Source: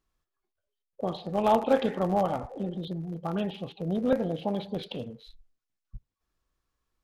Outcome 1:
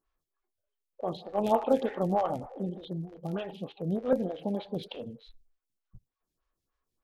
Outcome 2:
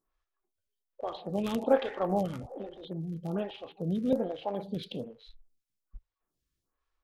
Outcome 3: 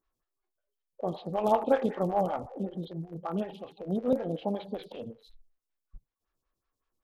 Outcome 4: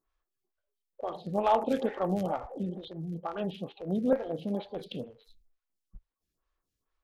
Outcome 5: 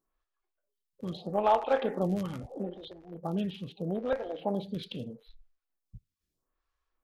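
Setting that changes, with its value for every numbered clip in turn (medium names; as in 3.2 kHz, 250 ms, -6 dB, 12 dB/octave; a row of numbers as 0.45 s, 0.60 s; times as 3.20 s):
lamp-driven phase shifter, rate: 3.3 Hz, 1.2 Hz, 5.3 Hz, 2.2 Hz, 0.78 Hz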